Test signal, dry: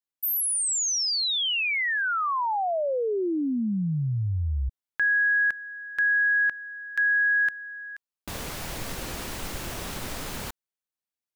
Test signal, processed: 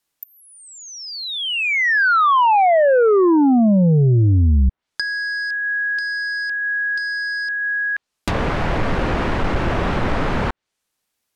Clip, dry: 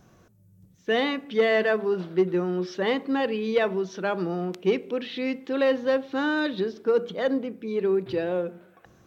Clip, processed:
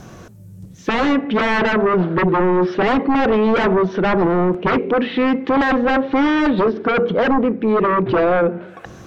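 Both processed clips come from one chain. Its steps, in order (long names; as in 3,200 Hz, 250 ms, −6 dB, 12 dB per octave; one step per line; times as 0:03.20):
sine wavefolder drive 14 dB, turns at −11.5 dBFS
treble cut that deepens with the level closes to 1,800 Hz, closed at −16.5 dBFS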